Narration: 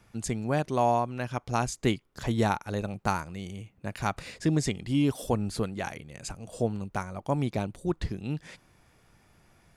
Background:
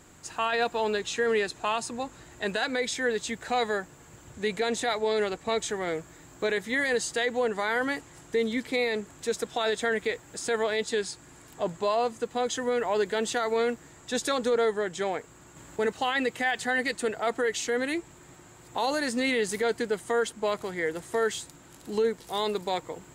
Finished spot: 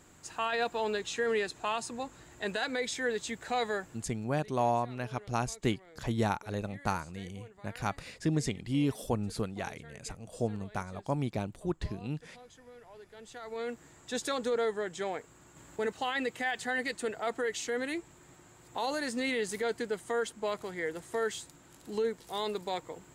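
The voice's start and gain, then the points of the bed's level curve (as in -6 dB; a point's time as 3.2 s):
3.80 s, -4.0 dB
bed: 3.92 s -4.5 dB
4.39 s -26 dB
13.07 s -26 dB
13.82 s -5.5 dB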